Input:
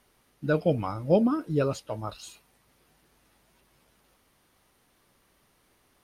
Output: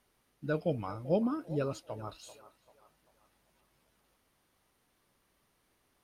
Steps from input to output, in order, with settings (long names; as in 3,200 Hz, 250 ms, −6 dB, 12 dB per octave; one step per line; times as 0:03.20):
feedback echo with a band-pass in the loop 390 ms, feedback 47%, band-pass 970 Hz, level −14 dB
level −7.5 dB